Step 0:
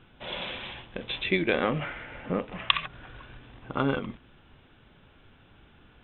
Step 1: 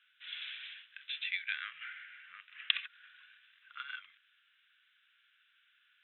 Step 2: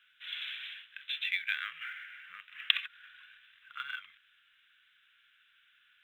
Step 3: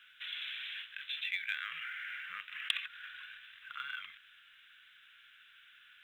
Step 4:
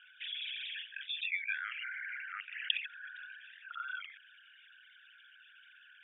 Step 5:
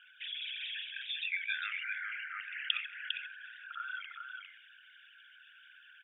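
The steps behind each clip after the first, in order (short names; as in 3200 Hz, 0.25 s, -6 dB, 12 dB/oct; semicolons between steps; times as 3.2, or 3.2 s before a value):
elliptic high-pass 1500 Hz, stop band 50 dB; gain -6 dB
low shelf 290 Hz +8 dB; in parallel at -11.5 dB: short-mantissa float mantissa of 2-bit; on the sum: gain +1.5 dB
in parallel at 0 dB: negative-ratio compressor -49 dBFS, ratio -1; on the sum: soft clip -13.5 dBFS, distortion -16 dB; gain -4 dB
formant sharpening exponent 3; gain +1 dB
echo 0.403 s -5 dB; on a send at -18.5 dB: reverb RT60 0.90 s, pre-delay 4 ms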